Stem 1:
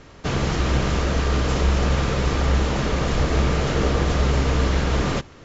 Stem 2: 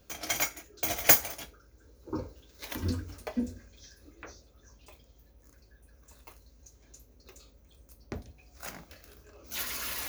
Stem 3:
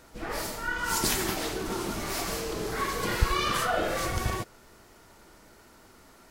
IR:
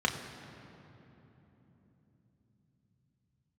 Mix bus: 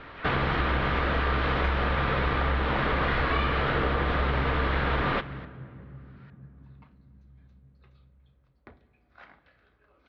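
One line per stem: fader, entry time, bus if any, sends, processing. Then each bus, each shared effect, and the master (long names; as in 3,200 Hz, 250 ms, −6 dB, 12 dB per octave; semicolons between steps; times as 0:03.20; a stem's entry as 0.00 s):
−3.5 dB, 0.00 s, send −23 dB, no processing
−14.0 dB, 0.55 s, send −18 dB, no processing
−1.5 dB, 0.00 s, no send, high-pass filter 1,000 Hz; tremolo with a sine in dB 0.61 Hz, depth 21 dB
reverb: on, RT60 3.6 s, pre-delay 3 ms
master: Butterworth low-pass 3,900 Hz 36 dB per octave; parametric band 1,600 Hz +10 dB 1.9 octaves; downward compressor, threshold −22 dBFS, peak gain reduction 7.5 dB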